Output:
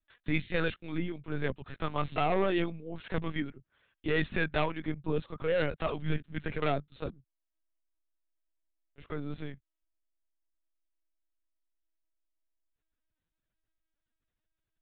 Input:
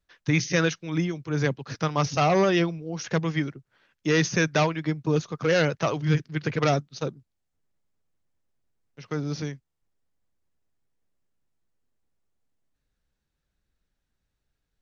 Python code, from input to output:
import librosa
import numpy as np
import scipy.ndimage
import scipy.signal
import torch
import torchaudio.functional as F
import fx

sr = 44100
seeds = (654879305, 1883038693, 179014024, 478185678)

y = fx.high_shelf(x, sr, hz=2100.0, db=2.5)
y = fx.lpc_vocoder(y, sr, seeds[0], excitation='pitch_kept', order=16)
y = y * 10.0 ** (-7.0 / 20.0)